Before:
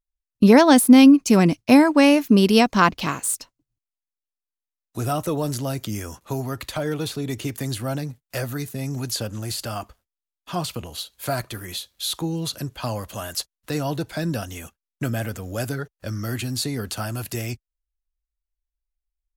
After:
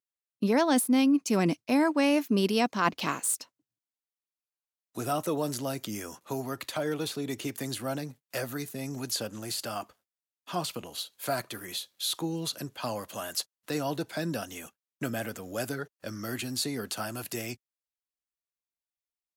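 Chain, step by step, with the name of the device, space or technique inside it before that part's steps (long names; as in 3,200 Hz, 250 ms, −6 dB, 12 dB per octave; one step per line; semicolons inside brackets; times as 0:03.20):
high-pass filter 200 Hz 12 dB per octave
compression on the reversed sound (reversed playback; downward compressor 6 to 1, threshold −17 dBFS, peak gain reduction 9 dB; reversed playback)
level −4 dB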